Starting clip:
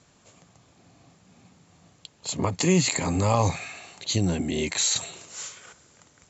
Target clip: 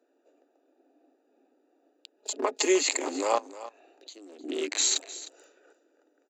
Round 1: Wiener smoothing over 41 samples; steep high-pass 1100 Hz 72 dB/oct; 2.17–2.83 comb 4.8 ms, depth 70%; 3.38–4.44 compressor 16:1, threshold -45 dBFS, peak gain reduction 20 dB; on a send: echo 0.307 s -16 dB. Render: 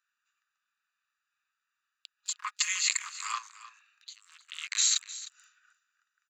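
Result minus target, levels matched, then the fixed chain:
1000 Hz band -5.5 dB
Wiener smoothing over 41 samples; steep high-pass 280 Hz 72 dB/oct; 2.17–2.83 comb 4.8 ms, depth 70%; 3.38–4.44 compressor 16:1, threshold -45 dBFS, peak gain reduction 25.5 dB; on a send: echo 0.307 s -16 dB

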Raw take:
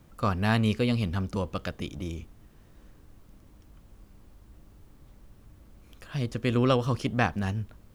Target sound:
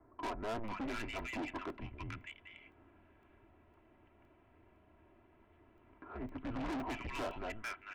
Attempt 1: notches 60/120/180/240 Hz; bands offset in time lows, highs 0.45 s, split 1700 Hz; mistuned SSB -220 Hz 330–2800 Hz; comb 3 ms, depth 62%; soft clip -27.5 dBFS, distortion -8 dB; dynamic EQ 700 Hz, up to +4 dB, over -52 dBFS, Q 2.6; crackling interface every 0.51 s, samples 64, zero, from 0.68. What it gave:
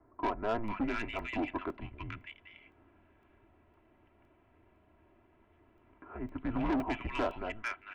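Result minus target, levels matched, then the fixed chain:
soft clip: distortion -5 dB
notches 60/120/180/240 Hz; bands offset in time lows, highs 0.45 s, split 1700 Hz; mistuned SSB -220 Hz 330–2800 Hz; comb 3 ms, depth 62%; soft clip -37.5 dBFS, distortion -2 dB; dynamic EQ 700 Hz, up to +4 dB, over -52 dBFS, Q 2.6; crackling interface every 0.51 s, samples 64, zero, from 0.68

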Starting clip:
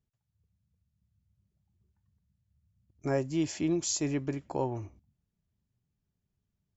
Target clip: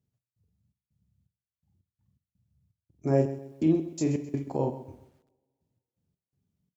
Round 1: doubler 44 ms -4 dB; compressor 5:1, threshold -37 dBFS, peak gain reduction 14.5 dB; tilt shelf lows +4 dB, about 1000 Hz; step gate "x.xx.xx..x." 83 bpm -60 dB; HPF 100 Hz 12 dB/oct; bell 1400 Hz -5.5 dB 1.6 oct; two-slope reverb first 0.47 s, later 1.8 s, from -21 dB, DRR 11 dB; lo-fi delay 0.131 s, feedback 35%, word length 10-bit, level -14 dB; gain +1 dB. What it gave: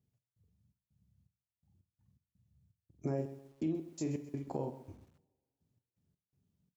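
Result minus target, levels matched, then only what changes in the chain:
compressor: peak gain reduction +14.5 dB
remove: compressor 5:1, threshold -37 dBFS, peak gain reduction 14.5 dB

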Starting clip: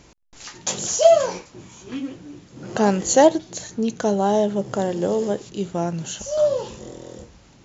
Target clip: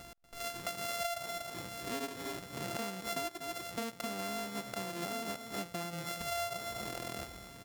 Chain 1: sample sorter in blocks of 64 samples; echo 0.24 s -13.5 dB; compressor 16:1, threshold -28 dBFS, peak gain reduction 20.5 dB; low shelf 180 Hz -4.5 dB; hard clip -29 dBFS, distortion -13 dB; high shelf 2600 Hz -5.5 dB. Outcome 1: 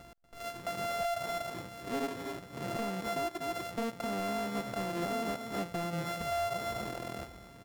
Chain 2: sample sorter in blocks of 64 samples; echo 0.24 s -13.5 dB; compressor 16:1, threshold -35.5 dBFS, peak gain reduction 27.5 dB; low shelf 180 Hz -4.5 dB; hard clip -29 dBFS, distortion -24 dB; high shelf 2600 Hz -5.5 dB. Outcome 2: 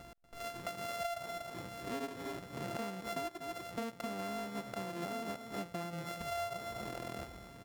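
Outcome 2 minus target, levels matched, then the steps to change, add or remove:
4000 Hz band -3.5 dB
change: high shelf 2600 Hz +3.5 dB

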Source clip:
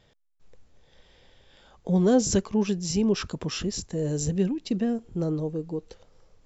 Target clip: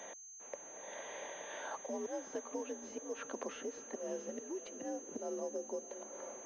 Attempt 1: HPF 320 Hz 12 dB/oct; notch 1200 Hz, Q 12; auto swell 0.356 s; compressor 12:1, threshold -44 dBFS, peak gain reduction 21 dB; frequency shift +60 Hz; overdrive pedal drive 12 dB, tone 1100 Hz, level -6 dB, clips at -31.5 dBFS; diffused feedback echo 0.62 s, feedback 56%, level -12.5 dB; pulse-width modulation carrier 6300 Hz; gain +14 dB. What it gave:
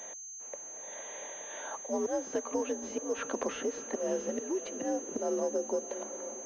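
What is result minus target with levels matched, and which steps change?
compressor: peak gain reduction -9.5 dB
change: compressor 12:1, threshold -54.5 dBFS, peak gain reduction 30.5 dB

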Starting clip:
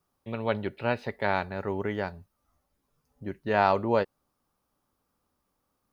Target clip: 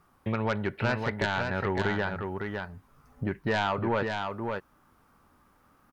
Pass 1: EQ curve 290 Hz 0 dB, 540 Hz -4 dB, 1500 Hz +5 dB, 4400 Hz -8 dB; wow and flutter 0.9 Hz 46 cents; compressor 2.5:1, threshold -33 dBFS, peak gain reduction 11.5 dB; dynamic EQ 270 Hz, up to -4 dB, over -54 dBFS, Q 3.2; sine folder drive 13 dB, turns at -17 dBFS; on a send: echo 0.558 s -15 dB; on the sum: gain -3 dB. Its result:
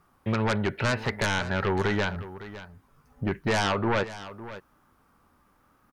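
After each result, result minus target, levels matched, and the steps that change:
echo-to-direct -10 dB; compressor: peak gain reduction -5.5 dB
change: echo 0.558 s -5 dB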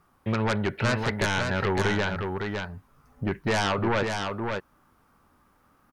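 compressor: peak gain reduction -5.5 dB
change: compressor 2.5:1, threshold -42 dBFS, peak gain reduction 16.5 dB

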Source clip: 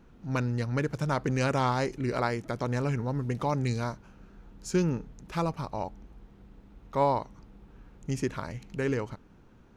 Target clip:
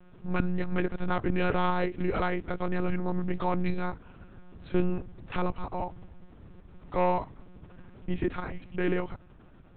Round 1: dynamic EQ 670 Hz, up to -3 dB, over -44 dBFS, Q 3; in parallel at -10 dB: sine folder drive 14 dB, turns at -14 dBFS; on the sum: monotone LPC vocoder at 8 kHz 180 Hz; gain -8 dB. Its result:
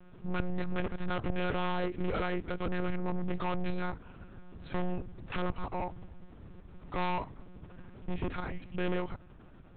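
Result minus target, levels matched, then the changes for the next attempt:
sine folder: distortion +18 dB
change: sine folder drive 14 dB, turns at -5 dBFS

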